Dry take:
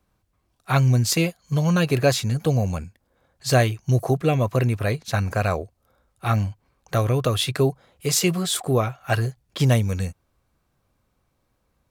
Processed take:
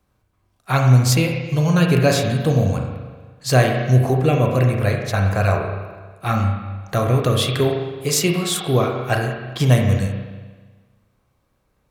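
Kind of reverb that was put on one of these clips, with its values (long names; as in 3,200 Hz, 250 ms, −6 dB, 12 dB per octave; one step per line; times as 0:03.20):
spring reverb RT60 1.4 s, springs 31/40 ms, chirp 55 ms, DRR 1.5 dB
level +1.5 dB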